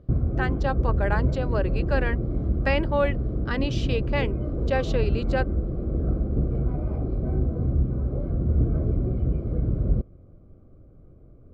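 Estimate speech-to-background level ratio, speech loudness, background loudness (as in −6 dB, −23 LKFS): −2.0 dB, −29.0 LKFS, −27.0 LKFS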